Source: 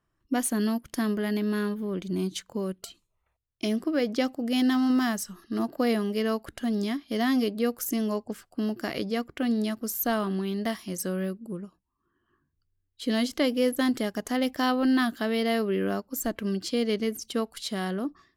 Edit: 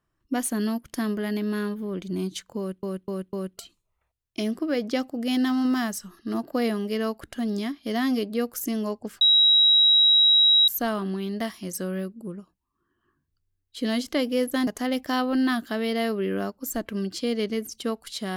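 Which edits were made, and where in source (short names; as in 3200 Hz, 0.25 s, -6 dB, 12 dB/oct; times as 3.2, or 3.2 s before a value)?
2.58–2.83 loop, 4 plays
8.46–9.93 bleep 3850 Hz -14 dBFS
13.92–14.17 cut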